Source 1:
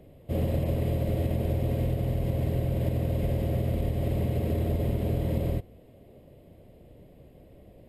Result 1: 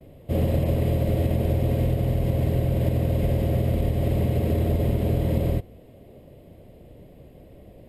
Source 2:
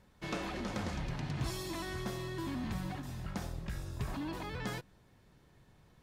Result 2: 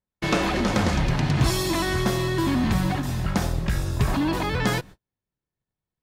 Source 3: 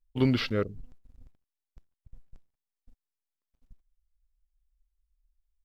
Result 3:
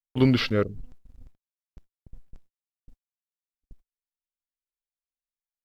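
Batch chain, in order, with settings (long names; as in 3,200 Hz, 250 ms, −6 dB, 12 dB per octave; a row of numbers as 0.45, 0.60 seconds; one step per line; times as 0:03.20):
noise gate −55 dBFS, range −42 dB
loudness normalisation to −24 LKFS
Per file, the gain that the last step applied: +4.5, +15.5, +4.5 decibels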